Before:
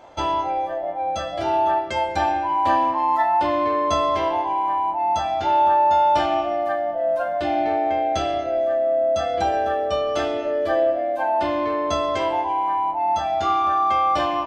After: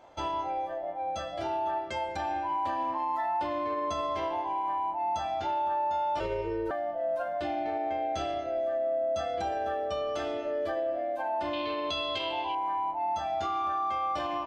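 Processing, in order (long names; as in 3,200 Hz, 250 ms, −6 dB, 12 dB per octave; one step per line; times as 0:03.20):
0:06.20–0:06.71: frequency shifter −250 Hz
0:11.53–0:12.55: flat-topped bell 3,400 Hz +15 dB 1.1 octaves
brickwall limiter −15 dBFS, peak gain reduction 8 dB
level −8.5 dB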